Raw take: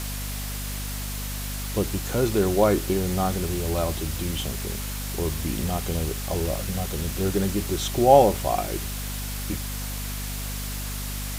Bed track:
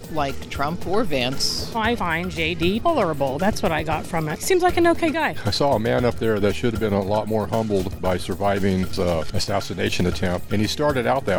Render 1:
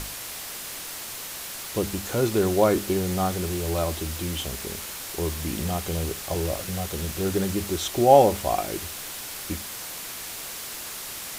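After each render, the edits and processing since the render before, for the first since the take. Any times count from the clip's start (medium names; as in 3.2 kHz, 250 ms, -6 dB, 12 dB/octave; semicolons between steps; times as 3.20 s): hum notches 50/100/150/200/250 Hz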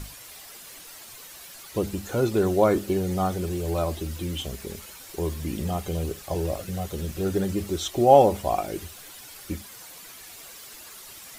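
noise reduction 11 dB, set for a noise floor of -36 dBFS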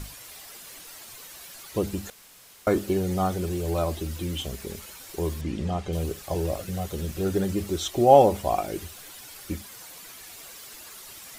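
2.10–2.67 s: room tone; 5.41–5.93 s: distance through air 89 m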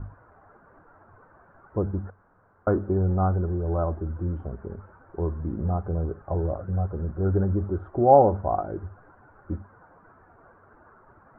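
Chebyshev low-pass 1.5 kHz, order 5; peaking EQ 96 Hz +11 dB 0.24 oct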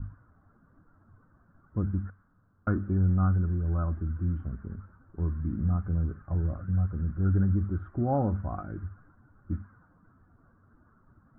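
level-controlled noise filter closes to 710 Hz, open at -20.5 dBFS; high-order bell 590 Hz -15 dB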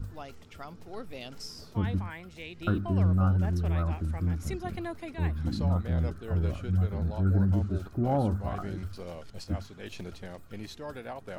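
add bed track -20 dB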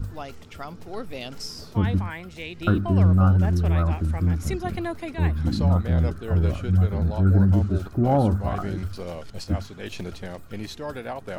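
trim +7 dB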